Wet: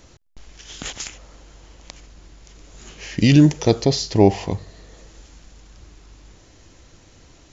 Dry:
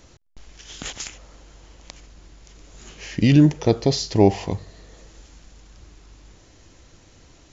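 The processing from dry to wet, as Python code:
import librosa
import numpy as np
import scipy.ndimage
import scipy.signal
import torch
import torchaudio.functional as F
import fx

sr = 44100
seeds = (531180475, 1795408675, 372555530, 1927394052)

y = fx.high_shelf(x, sr, hz=4800.0, db=11.5, at=(3.18, 3.85))
y = y * librosa.db_to_amplitude(1.5)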